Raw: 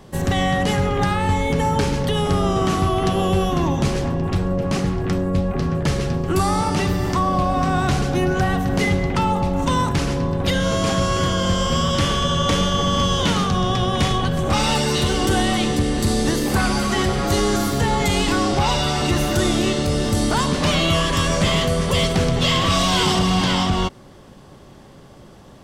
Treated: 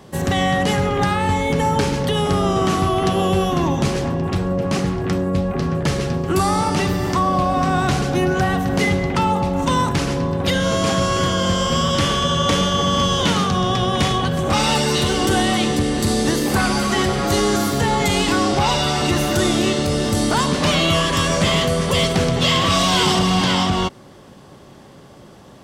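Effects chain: high-pass 100 Hz 6 dB/octave; trim +2 dB

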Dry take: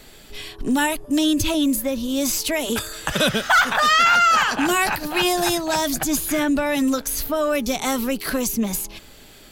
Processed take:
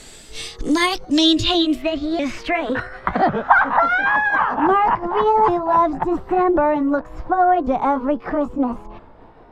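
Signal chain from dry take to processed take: sawtooth pitch modulation +4 st, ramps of 1096 ms; low-pass sweep 8.1 kHz -> 1 kHz, 0.39–3.33 s; trim +3 dB

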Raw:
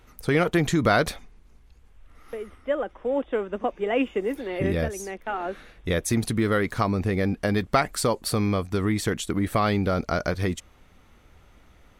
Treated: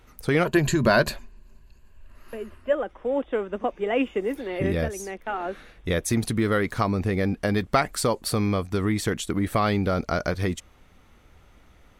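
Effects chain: 0.45–2.73 s: rippled EQ curve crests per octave 1.4, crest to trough 11 dB

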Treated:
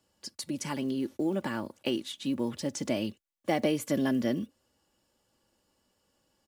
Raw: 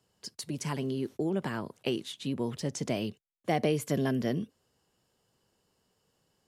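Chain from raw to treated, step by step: block-companded coder 7-bit; comb 3.5 ms, depth 54%

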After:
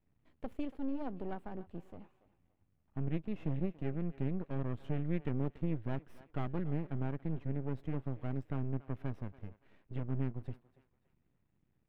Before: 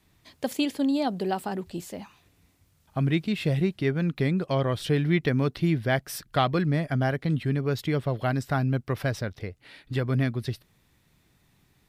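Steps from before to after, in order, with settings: half-wave rectifier; FFT filter 240 Hz 0 dB, 2.8 kHz -13 dB, 4.7 kHz -27 dB; thinning echo 284 ms, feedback 37%, high-pass 530 Hz, level -16 dB; trim -6.5 dB

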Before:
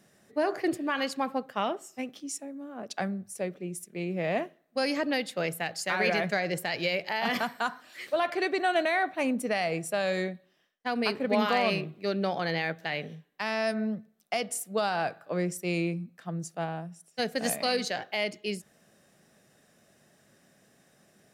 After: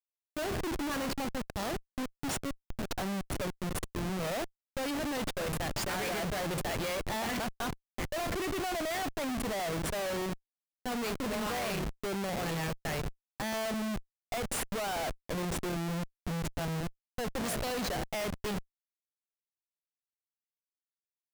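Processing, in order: 1.54–2.31 s: sorted samples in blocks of 8 samples; Schmitt trigger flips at -35.5 dBFS; trim -2 dB

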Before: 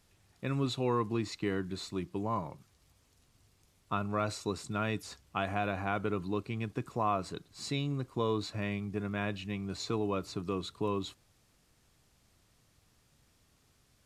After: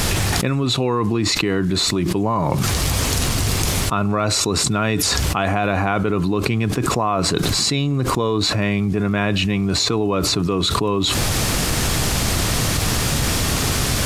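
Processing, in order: level flattener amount 100%; trim +9 dB

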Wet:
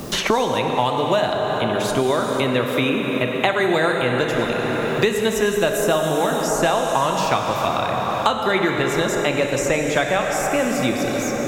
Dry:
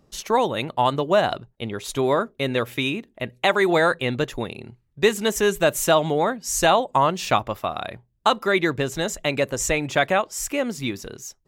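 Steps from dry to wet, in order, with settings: word length cut 12-bit, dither triangular; plate-style reverb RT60 3.7 s, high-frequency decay 0.65×, DRR 2 dB; three bands compressed up and down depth 100%; trim -1 dB

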